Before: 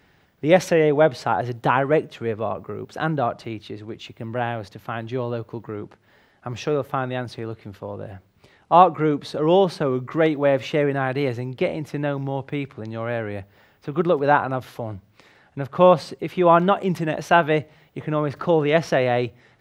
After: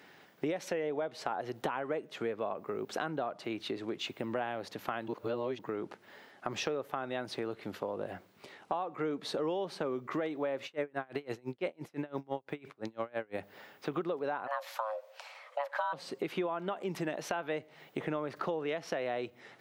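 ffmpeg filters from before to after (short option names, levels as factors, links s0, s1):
-filter_complex "[0:a]asettb=1/sr,asplit=3[s0][s1][s2];[s0]atrim=end=10.654[s3];[s1]atrim=start=10.65:end=13.38,asetpts=PTS-STARTPTS,afade=t=in:d=0.004:c=qsin,afade=t=out:st=2.726:d=0.004:c=qsin,aeval=exprs='val(0)*pow(10,-33*(0.5-0.5*cos(2*PI*5.9*n/s))/20)':c=same[s4];[s2]atrim=start=13.376[s5];[s3][s4]acrossfade=d=0.004:c1=hsin:c2=qsin[s6];[s6][s5]acrossfade=d=0.004:c1=qsin:c2=hsin,asplit=3[s7][s8][s9];[s7]afade=t=out:st=14.46:d=0.02[s10];[s8]afreqshift=430,afade=t=in:st=14.46:d=0.02,afade=t=out:st=15.92:d=0.02[s11];[s9]afade=t=in:st=15.92:d=0.02[s12];[s10][s11][s12]amix=inputs=3:normalize=0,asplit=3[s13][s14][s15];[s13]atrim=end=5.082[s16];[s14]atrim=start=5.078:end=5.592,asetpts=PTS-STARTPTS,areverse[s17];[s15]atrim=start=5.588[s18];[s16][s17]acrossfade=d=0.004:c1=hsin:c2=hsin[s19];[s19][s18]acrossfade=d=0.004:c1=hsin:c2=hsin,highpass=250,alimiter=limit=0.237:level=0:latency=1:release=312,acompressor=threshold=0.0178:ratio=6,volume=1.33"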